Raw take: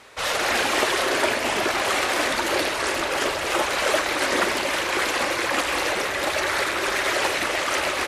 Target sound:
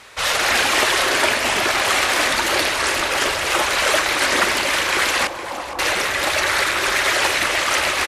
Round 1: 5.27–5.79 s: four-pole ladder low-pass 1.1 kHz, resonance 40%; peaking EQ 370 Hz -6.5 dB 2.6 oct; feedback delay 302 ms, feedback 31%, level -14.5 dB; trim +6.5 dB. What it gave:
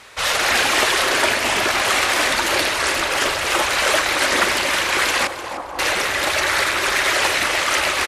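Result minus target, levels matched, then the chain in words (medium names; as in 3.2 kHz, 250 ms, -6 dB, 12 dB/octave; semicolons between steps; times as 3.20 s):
echo 161 ms early
5.27–5.79 s: four-pole ladder low-pass 1.1 kHz, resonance 40%; peaking EQ 370 Hz -6.5 dB 2.6 oct; feedback delay 463 ms, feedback 31%, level -14.5 dB; trim +6.5 dB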